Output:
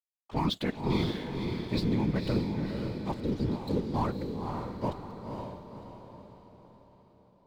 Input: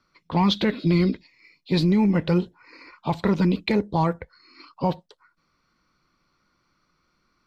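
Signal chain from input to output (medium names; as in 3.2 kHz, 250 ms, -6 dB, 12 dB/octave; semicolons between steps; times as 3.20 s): spectral replace 3.25–3.91 s, 510–3700 Hz before; crossover distortion -37.5 dBFS; whisper effect; on a send: echo that smears into a reverb 523 ms, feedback 48%, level -4 dB; on the sum: trim -8.5 dB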